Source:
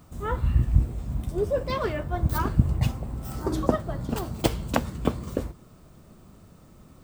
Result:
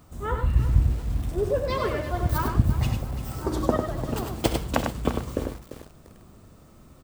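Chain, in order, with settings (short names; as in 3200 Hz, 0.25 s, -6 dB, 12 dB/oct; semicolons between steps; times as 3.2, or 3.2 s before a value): bell 170 Hz -3.5 dB 0.77 oct; on a send: tapped delay 68/99 ms -14/-5.5 dB; on the sum: lo-fi delay 0.345 s, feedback 35%, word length 6-bit, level -12 dB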